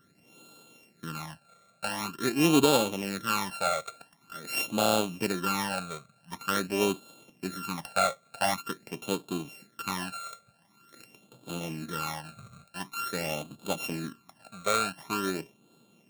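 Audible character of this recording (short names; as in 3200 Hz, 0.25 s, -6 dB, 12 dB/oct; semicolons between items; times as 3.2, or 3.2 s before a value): a buzz of ramps at a fixed pitch in blocks of 32 samples; phasing stages 12, 0.46 Hz, lowest notch 290–1900 Hz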